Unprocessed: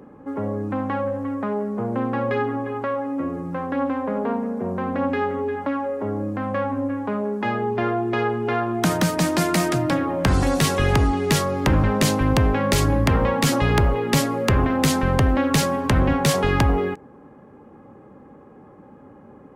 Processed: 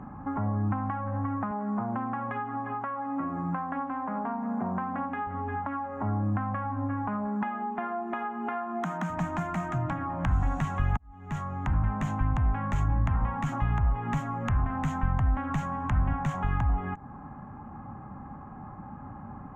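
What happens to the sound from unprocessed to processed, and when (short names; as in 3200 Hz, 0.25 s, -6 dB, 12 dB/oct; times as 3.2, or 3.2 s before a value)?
1.51–5.27 HPF 190 Hz
7.27–9.1 brick-wall FIR high-pass 160 Hz
10.97–13.98 fade in
whole clip: EQ curve 130 Hz 0 dB, 230 Hz -3 dB, 490 Hz -17 dB, 720 Hz +6 dB, 1300 Hz +8 dB, 3200 Hz -3 dB, 4800 Hz -18 dB, 6800 Hz +3 dB, 9900 Hz -15 dB, 14000 Hz -7 dB; compressor 10:1, threshold -31 dBFS; tilt -3 dB/oct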